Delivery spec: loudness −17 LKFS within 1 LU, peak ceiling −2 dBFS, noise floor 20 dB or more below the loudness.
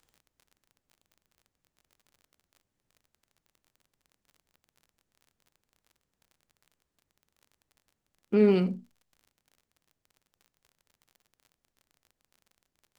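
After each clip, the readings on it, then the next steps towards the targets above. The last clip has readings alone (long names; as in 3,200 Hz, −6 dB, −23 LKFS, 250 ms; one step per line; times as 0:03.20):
crackle rate 35 per second; integrated loudness −25.0 LKFS; sample peak −11.5 dBFS; target loudness −17.0 LKFS
→ click removal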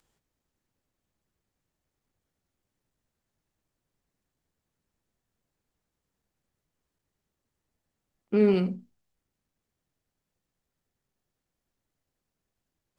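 crackle rate 0.077 per second; integrated loudness −25.0 LKFS; sample peak −11.5 dBFS; target loudness −17.0 LKFS
→ level +8 dB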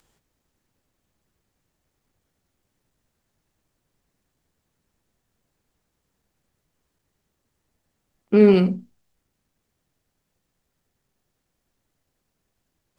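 integrated loudness −17.0 LKFS; sample peak −3.5 dBFS; background noise floor −77 dBFS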